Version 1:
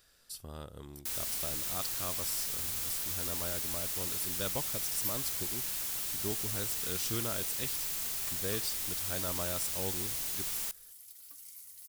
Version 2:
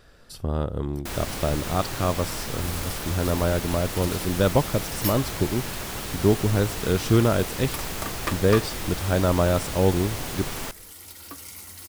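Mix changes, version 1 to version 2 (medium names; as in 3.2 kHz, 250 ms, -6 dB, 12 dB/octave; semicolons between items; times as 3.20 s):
second sound +10.5 dB; master: remove pre-emphasis filter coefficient 0.9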